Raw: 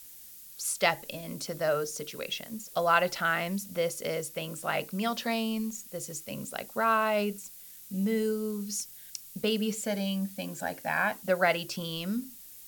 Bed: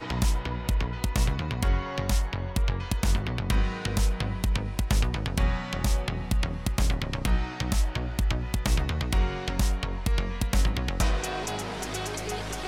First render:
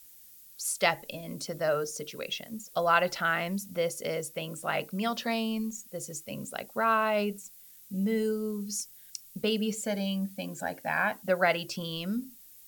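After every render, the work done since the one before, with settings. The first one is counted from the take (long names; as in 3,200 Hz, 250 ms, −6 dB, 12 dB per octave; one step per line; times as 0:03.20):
broadband denoise 6 dB, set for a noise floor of −49 dBFS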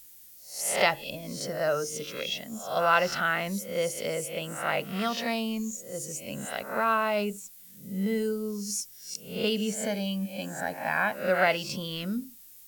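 peak hold with a rise ahead of every peak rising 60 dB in 0.48 s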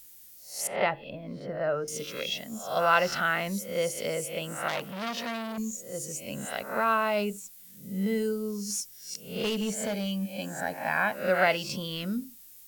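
0:00.67–0:01.88: high-frequency loss of the air 480 metres
0:04.68–0:05.58: saturating transformer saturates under 2,900 Hz
0:08.51–0:10.30: hard clipping −25.5 dBFS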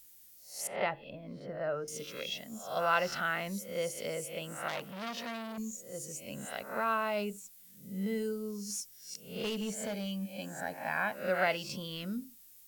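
level −6 dB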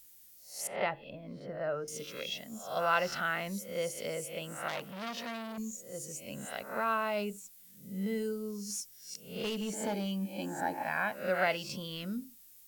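0:09.73–0:10.83: hollow resonant body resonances 330/860 Hz, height 15 dB, ringing for 40 ms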